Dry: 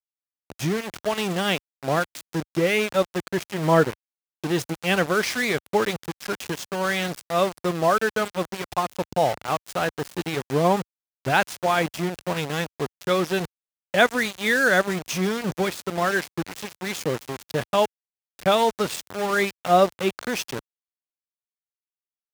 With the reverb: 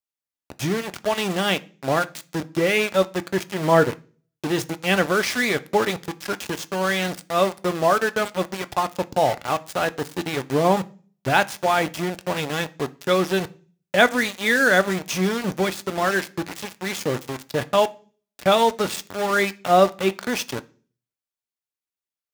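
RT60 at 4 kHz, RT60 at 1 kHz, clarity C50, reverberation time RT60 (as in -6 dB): 0.45 s, 0.35 s, 22.0 dB, 0.40 s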